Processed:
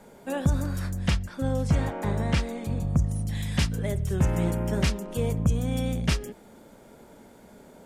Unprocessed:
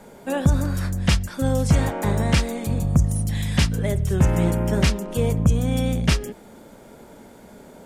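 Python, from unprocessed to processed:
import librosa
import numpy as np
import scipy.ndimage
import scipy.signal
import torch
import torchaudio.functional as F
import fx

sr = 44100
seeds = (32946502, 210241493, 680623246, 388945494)

y = fx.high_shelf(x, sr, hz=fx.line((1.09, 5100.0), (3.28, 7700.0)), db=-9.5, at=(1.09, 3.28), fade=0.02)
y = F.gain(torch.from_numpy(y), -5.5).numpy()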